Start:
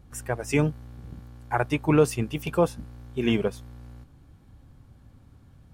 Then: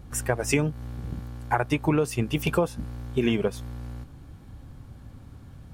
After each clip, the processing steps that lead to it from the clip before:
downward compressor 10 to 1, threshold −27 dBFS, peak gain reduction 14 dB
level +7.5 dB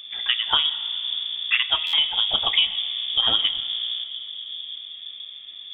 on a send at −11 dB: convolution reverb RT60 3.5 s, pre-delay 10 ms
on the sum: voice inversion scrambler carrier 3,500 Hz
buffer that repeats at 0:01.86, samples 512, times 5
level +2.5 dB

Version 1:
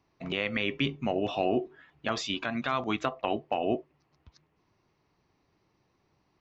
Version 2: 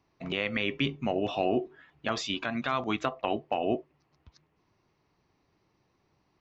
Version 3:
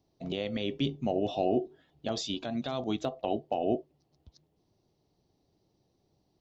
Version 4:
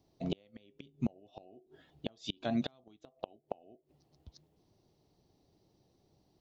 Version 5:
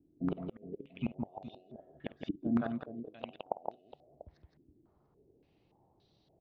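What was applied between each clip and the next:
no processing that can be heard
flat-topped bell 1,600 Hz −14 dB
gate with flip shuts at −23 dBFS, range −32 dB; level +2 dB
multi-tap delay 51/167/417/692 ms −16/−4/−12.5/−18.5 dB; low-pass on a step sequencer 3.5 Hz 300–3,800 Hz; level −2.5 dB

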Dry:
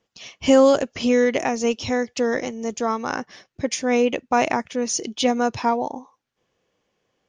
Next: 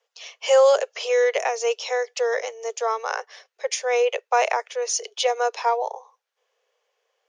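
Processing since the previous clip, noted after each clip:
Butterworth high-pass 420 Hz 96 dB per octave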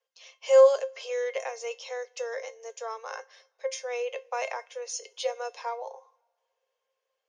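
tuned comb filter 530 Hz, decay 0.16 s, harmonics all, mix 80%
coupled-rooms reverb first 0.37 s, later 1.9 s, from −19 dB, DRR 18 dB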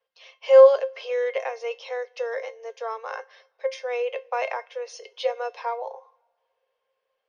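moving average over 6 samples
level +5 dB

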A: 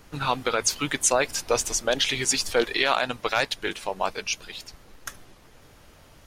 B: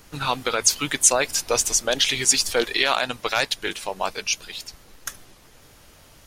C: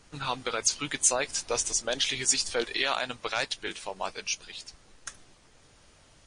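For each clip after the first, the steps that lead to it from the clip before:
high-shelf EQ 3,400 Hz +7.5 dB
level −7 dB; MP3 40 kbit/s 22,050 Hz

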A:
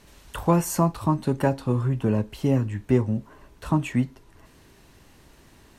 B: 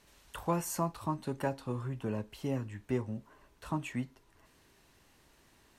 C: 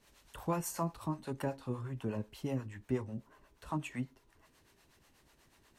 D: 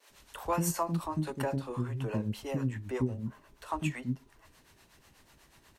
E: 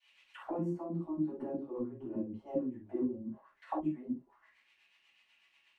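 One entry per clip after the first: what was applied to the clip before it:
low-shelf EQ 420 Hz −6.5 dB; level −8 dB
two-band tremolo in antiphase 8.2 Hz, depth 70%, crossover 470 Hz; level +1 dB
pitch vibrato 0.36 Hz 8.5 cents; multiband delay without the direct sound highs, lows 100 ms, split 360 Hz; level +6 dB
envelope filter 310–2,900 Hz, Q 4.8, down, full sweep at −31 dBFS; convolution reverb, pre-delay 3 ms, DRR −8 dB; level −6 dB

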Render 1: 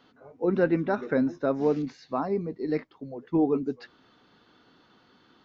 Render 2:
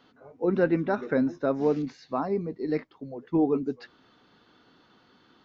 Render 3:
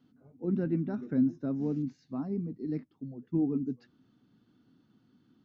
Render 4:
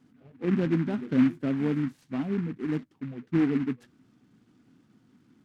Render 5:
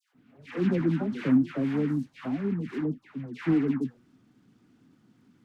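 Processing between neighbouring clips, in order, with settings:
no processing that can be heard
octave-band graphic EQ 125/250/500/1,000/2,000/4,000 Hz +9/+9/−8/−8/−7/−7 dB; level −8.5 dB
short delay modulated by noise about 1,500 Hz, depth 0.06 ms; level +4.5 dB
all-pass dispersion lows, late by 146 ms, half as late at 1,200 Hz

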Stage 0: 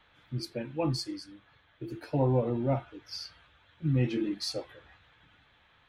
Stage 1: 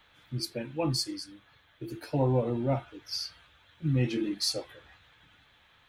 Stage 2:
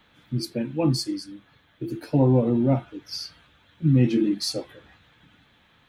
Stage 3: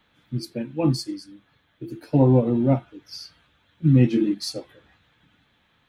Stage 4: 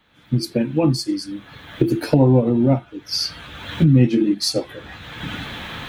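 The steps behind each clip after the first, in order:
high-shelf EQ 4,900 Hz +11.5 dB
parametric band 220 Hz +11 dB 1.7 octaves; level +1 dB
expander for the loud parts 1.5 to 1, over −31 dBFS; level +3 dB
camcorder AGC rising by 30 dB per second; level +2.5 dB

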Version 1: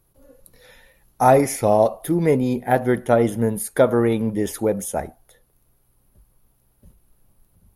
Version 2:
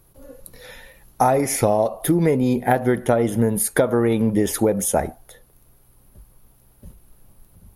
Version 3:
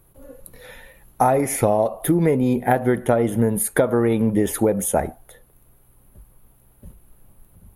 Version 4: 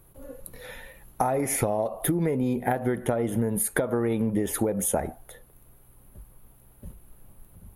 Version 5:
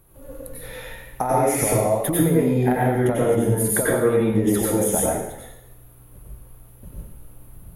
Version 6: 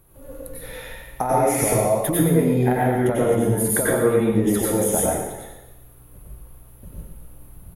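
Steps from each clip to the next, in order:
downward compressor 12 to 1, threshold −22 dBFS, peak gain reduction 13.5 dB; level +8 dB
parametric band 5,200 Hz −9.5 dB 0.78 octaves
downward compressor 6 to 1, threshold −22 dBFS, peak gain reduction 10 dB
dense smooth reverb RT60 0.79 s, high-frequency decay 1×, pre-delay 80 ms, DRR −5 dB
repeating echo 119 ms, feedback 41%, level −10.5 dB

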